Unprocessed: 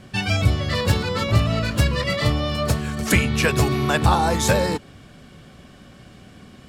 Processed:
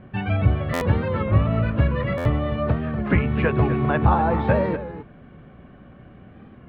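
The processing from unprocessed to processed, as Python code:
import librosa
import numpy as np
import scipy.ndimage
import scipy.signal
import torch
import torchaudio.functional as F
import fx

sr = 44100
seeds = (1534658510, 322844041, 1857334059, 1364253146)

p1 = scipy.ndimage.gaussian_filter1d(x, 4.1, mode='constant')
p2 = p1 + fx.echo_single(p1, sr, ms=253, db=-12.0, dry=0)
p3 = fx.buffer_glitch(p2, sr, at_s=(0.73, 2.17), block=512, repeats=6)
y = fx.record_warp(p3, sr, rpm=33.33, depth_cents=100.0)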